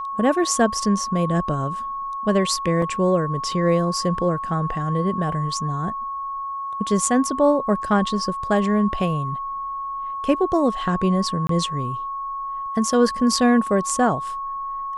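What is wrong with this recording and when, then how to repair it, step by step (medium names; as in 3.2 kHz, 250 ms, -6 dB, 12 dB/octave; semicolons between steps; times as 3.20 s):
whine 1.1 kHz -26 dBFS
2.82 s: dropout 3.7 ms
11.47–11.49 s: dropout 23 ms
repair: band-stop 1.1 kHz, Q 30; interpolate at 2.82 s, 3.7 ms; interpolate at 11.47 s, 23 ms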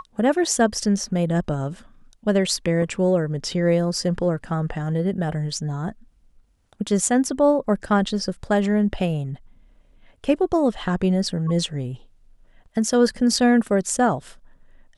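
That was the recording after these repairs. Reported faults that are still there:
nothing left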